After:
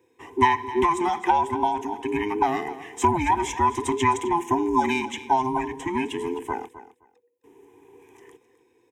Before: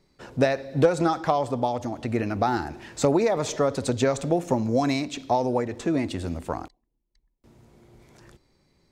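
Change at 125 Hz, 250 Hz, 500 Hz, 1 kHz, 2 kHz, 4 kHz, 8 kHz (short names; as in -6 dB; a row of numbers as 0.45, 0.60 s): -6.5, -1.5, -3.5, +7.0, +4.5, 0.0, -0.5 dB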